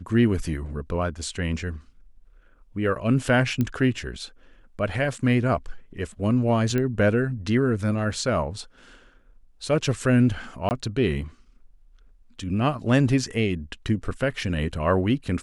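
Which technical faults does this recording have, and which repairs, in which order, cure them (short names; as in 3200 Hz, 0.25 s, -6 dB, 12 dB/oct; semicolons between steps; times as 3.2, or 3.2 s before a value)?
3.61 pop -13 dBFS
6.78 pop -14 dBFS
10.69–10.71 gap 19 ms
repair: de-click; interpolate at 10.69, 19 ms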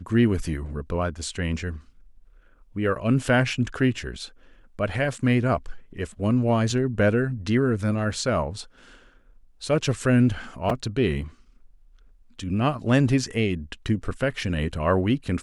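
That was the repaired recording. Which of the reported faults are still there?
none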